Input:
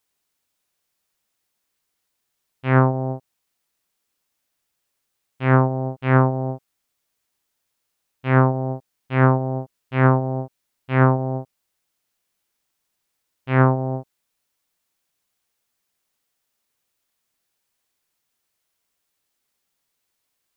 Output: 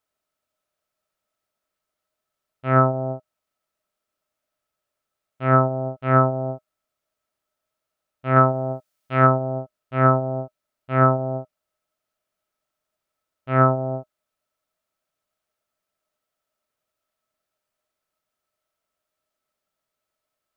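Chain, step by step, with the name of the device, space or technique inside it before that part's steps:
inside a helmet (high-shelf EQ 3,000 Hz −7 dB; hollow resonant body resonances 620/1,300 Hz, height 16 dB, ringing for 70 ms)
0:08.36–0:09.27: high-shelf EQ 2,300 Hz +9.5 dB
level −3.5 dB

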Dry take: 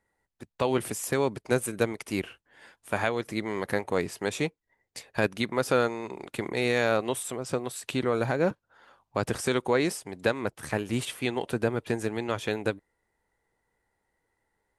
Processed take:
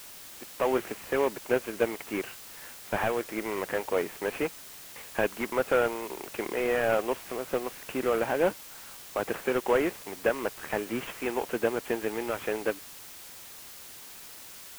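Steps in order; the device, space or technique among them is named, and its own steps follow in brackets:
army field radio (band-pass filter 320–3,300 Hz; variable-slope delta modulation 16 kbit/s; white noise bed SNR 15 dB)
level +2.5 dB

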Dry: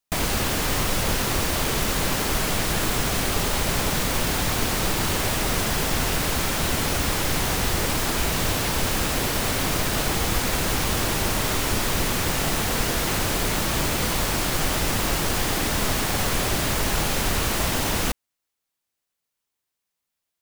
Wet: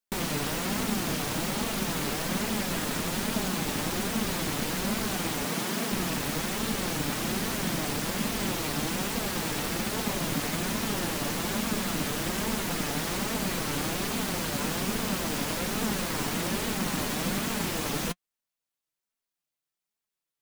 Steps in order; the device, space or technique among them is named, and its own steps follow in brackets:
alien voice (ring modulation 220 Hz; flanger 1.2 Hz, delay 4.3 ms, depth 2.8 ms, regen +41%)
0:05.45–0:05.92: high-pass filter 130 Hz 24 dB per octave

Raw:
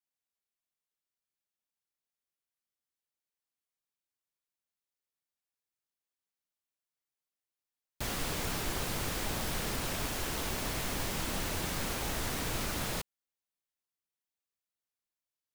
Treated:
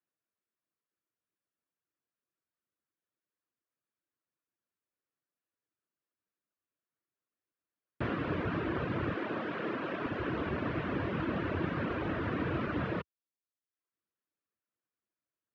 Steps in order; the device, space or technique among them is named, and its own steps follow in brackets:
bass cabinet (loudspeaker in its box 79–2,200 Hz, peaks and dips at 320 Hz +6 dB, 820 Hz −9 dB, 2,100 Hz −6 dB)
reverb reduction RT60 0.74 s
0:09.16–0:10.06: high-pass filter 250 Hz 12 dB per octave
level +6.5 dB

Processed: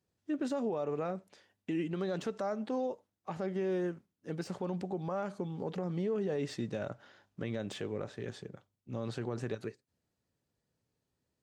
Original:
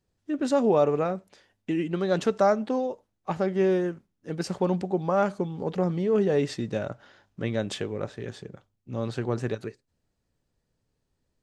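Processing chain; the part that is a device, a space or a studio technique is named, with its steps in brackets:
podcast mastering chain (high-pass filter 86 Hz; de-essing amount 95%; downward compressor 4 to 1, threshold −24 dBFS, peak gain reduction 7 dB; brickwall limiter −21.5 dBFS, peak gain reduction 6.5 dB; level −4 dB; MP3 96 kbit/s 44,100 Hz)

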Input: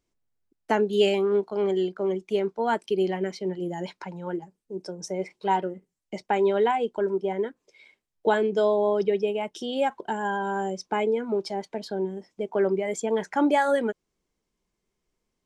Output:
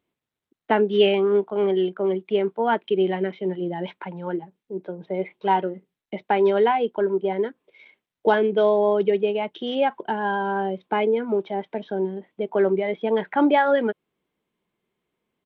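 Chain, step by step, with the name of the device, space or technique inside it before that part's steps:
Bluetooth headset (high-pass filter 120 Hz 12 dB per octave; downsampling to 8,000 Hz; level +3.5 dB; SBC 64 kbit/s 32,000 Hz)

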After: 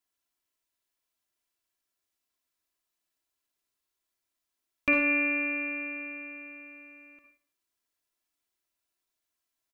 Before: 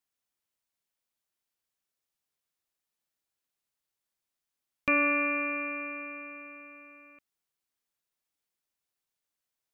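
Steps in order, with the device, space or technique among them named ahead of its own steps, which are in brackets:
microphone above a desk (comb filter 3 ms, depth 52%; convolution reverb RT60 0.45 s, pre-delay 49 ms, DRR 4.5 dB)

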